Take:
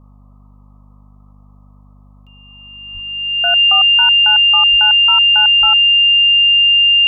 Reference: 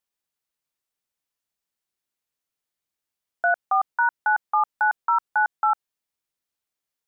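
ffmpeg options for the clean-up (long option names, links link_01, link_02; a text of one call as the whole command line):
ffmpeg -i in.wav -filter_complex "[0:a]bandreject=frequency=49.8:width_type=h:width=4,bandreject=frequency=99.6:width_type=h:width=4,bandreject=frequency=149.4:width_type=h:width=4,bandreject=frequency=199.2:width_type=h:width=4,bandreject=frequency=249:width_type=h:width=4,bandreject=frequency=2800:width=30,asplit=3[link_01][link_02][link_03];[link_01]afade=type=out:start_time=2.93:duration=0.02[link_04];[link_02]highpass=frequency=140:width=0.5412,highpass=frequency=140:width=1.3066,afade=type=in:start_time=2.93:duration=0.02,afade=type=out:start_time=3.05:duration=0.02[link_05];[link_03]afade=type=in:start_time=3.05:duration=0.02[link_06];[link_04][link_05][link_06]amix=inputs=3:normalize=0,asplit=3[link_07][link_08][link_09];[link_07]afade=type=out:start_time=4.7:duration=0.02[link_10];[link_08]highpass=frequency=140:width=0.5412,highpass=frequency=140:width=1.3066,afade=type=in:start_time=4.7:duration=0.02,afade=type=out:start_time=4.82:duration=0.02[link_11];[link_09]afade=type=in:start_time=4.82:duration=0.02[link_12];[link_10][link_11][link_12]amix=inputs=3:normalize=0,asplit=3[link_13][link_14][link_15];[link_13]afade=type=out:start_time=5.6:duration=0.02[link_16];[link_14]highpass=frequency=140:width=0.5412,highpass=frequency=140:width=1.3066,afade=type=in:start_time=5.6:duration=0.02,afade=type=out:start_time=5.72:duration=0.02[link_17];[link_15]afade=type=in:start_time=5.72:duration=0.02[link_18];[link_16][link_17][link_18]amix=inputs=3:normalize=0,afftdn=noise_reduction=30:noise_floor=-44" out.wav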